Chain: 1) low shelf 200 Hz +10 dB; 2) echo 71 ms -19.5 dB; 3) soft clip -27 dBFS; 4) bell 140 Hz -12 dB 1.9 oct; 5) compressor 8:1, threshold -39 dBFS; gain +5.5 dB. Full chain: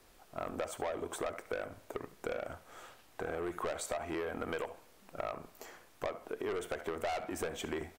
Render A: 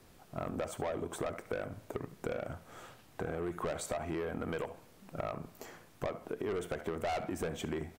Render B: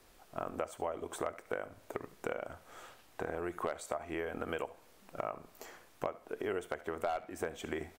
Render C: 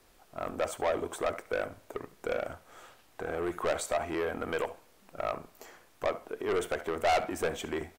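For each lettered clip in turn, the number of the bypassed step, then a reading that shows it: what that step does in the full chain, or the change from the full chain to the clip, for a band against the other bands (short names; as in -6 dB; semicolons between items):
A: 4, 125 Hz band +8.5 dB; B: 3, distortion -6 dB; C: 5, mean gain reduction 3.0 dB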